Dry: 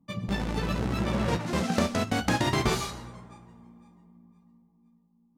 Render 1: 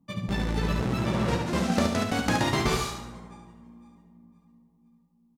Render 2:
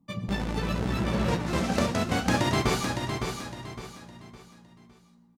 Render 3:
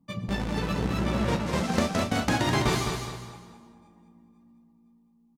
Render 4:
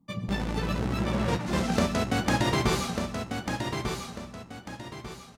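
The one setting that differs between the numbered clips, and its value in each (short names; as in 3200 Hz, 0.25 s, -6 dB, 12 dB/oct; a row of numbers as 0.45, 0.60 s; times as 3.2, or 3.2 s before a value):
feedback echo, time: 72, 560, 206, 1195 ms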